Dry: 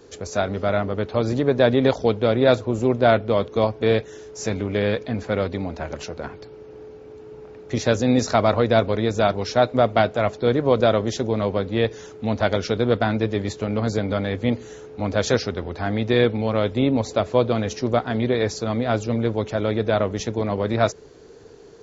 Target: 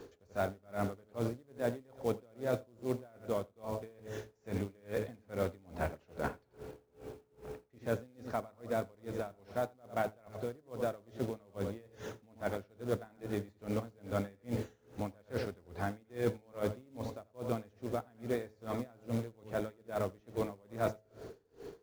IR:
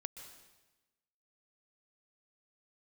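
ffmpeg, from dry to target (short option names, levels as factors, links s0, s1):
-filter_complex "[0:a]acrossover=split=2600[s0][s1];[s1]acompressor=threshold=0.00708:ratio=4:attack=1:release=60[s2];[s0][s2]amix=inputs=2:normalize=0,highshelf=f=4600:g=-10.5,bandreject=f=107.9:t=h:w=4,bandreject=f=215.8:t=h:w=4,bandreject=f=323.7:t=h:w=4,bandreject=f=431.6:t=h:w=4,bandreject=f=539.5:t=h:w=4,bandreject=f=647.4:t=h:w=4,bandreject=f=755.3:t=h:w=4,bandreject=f=863.2:t=h:w=4,bandreject=f=971.1:t=h:w=4,areverse,acompressor=threshold=0.0398:ratio=16,areverse,acrusher=bits=5:mode=log:mix=0:aa=0.000001,asplit=2[s3][s4];[1:a]atrim=start_sample=2205,adelay=85[s5];[s4][s5]afir=irnorm=-1:irlink=0,volume=0.473[s6];[s3][s6]amix=inputs=2:normalize=0,aeval=exprs='val(0)*pow(10,-30*(0.5-0.5*cos(2*PI*2.4*n/s))/20)':c=same"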